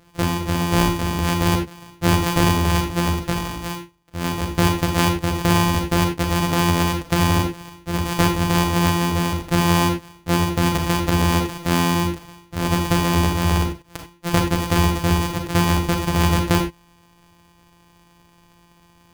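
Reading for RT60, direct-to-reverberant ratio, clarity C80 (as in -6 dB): not exponential, 3.5 dB, 13.0 dB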